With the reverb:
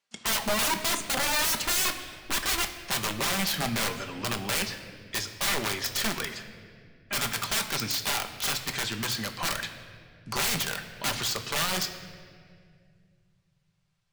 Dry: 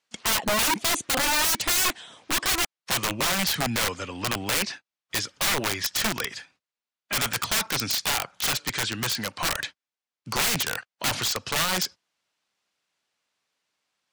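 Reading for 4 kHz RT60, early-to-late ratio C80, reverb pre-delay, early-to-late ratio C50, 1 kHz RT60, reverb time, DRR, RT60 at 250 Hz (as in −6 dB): 1.6 s, 11.0 dB, 5 ms, 10.0 dB, 1.8 s, 2.1 s, 5.5 dB, 2.9 s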